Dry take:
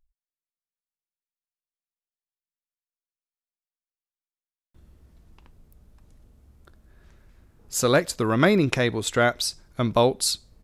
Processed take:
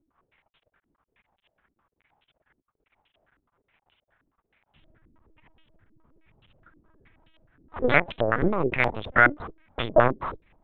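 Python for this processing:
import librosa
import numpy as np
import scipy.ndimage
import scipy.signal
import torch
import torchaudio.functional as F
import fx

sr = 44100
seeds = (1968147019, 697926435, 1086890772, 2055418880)

y = fx.cheby_harmonics(x, sr, harmonics=(6, 7, 8), levels_db=(-14, -25, -10), full_scale_db=-2.5)
y = fx.dmg_crackle(y, sr, seeds[0], per_s=110.0, level_db=-43.0)
y = fx.lpc_vocoder(y, sr, seeds[1], excitation='pitch_kept', order=10)
y = fx.filter_held_lowpass(y, sr, hz=9.5, low_hz=310.0, high_hz=3100.0)
y = y * 10.0 ** (-3.0 / 20.0)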